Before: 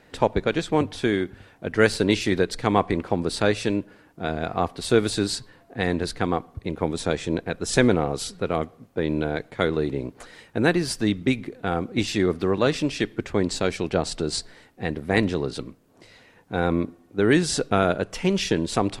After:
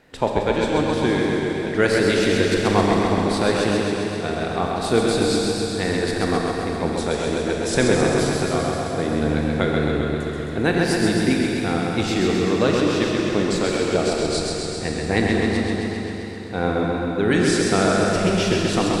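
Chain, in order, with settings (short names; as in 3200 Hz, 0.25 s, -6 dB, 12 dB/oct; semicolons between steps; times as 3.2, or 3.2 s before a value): Schroeder reverb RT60 3.6 s, combs from 27 ms, DRR 1 dB; warbling echo 0.132 s, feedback 70%, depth 51 cents, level -4 dB; gain -1 dB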